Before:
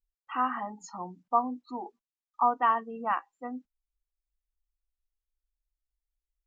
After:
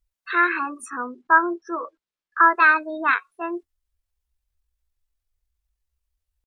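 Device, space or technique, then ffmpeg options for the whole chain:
chipmunk voice: -filter_complex "[0:a]asetrate=60591,aresample=44100,atempo=0.727827,asettb=1/sr,asplit=3[a][b][c];[a]atrim=end=0.904[d];[b]atrim=start=0.9:end=2.51,asetpts=PTS-STARTPTS,afade=t=in:d=0.004:c=qsin,afade=t=out:st=1.606:d=0.004:c=qsin,lowpass=5k[e];[c]atrim=start=2.506[f];[d][e]acrossfade=d=0.004:c1=hsin:c2=qsin[g];[g][f]acrossfade=d=0.004:c1=qsin:c2=hsin,volume=9dB"

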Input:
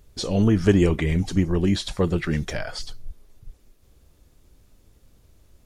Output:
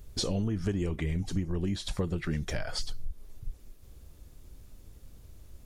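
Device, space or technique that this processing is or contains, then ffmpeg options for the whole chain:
ASMR close-microphone chain: -af "lowshelf=f=160:g=6,acompressor=threshold=-28dB:ratio=6,highshelf=f=8.7k:g=5"

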